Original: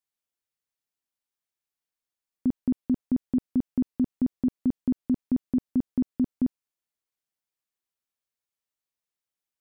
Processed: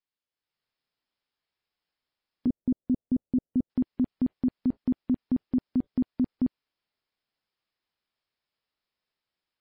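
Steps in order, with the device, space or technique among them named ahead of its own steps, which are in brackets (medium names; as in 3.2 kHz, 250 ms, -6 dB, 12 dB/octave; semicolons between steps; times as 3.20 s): 2.47–3.70 s: Chebyshev low-pass 570 Hz, order 3; low-bitrate web radio (level rider gain up to 9 dB; peak limiter -17 dBFS, peak gain reduction 8 dB; trim -1.5 dB; MP3 24 kbps 12 kHz)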